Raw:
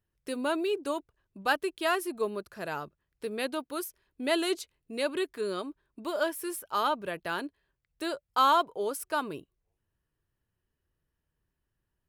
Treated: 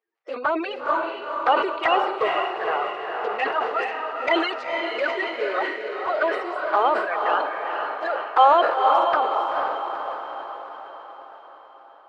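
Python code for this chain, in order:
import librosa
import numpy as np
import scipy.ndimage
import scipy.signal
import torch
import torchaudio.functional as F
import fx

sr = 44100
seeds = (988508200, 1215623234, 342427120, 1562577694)

p1 = fx.spec_quant(x, sr, step_db=30)
p2 = fx.cabinet(p1, sr, low_hz=420.0, low_slope=24, high_hz=3900.0, hz=(460.0, 770.0, 1200.0, 2000.0, 3600.0), db=(4, 9, 7, 5, -8))
p3 = fx.env_flanger(p2, sr, rest_ms=8.7, full_db=-21.5)
p4 = p3 + fx.echo_diffused(p3, sr, ms=471, feedback_pct=55, wet_db=-3, dry=0)
p5 = fx.sustainer(p4, sr, db_per_s=57.0)
y = F.gain(torch.from_numpy(p5), 7.5).numpy()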